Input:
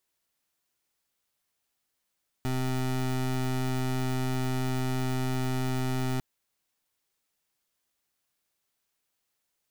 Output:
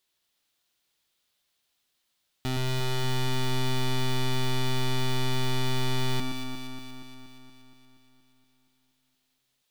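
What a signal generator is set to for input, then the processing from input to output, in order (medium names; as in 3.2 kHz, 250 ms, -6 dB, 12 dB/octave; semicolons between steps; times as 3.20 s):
pulse 129 Hz, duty 24% -28.5 dBFS 3.75 s
peaking EQ 3.6 kHz +9 dB 1 oct; echo whose repeats swap between lows and highs 118 ms, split 2 kHz, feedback 80%, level -4 dB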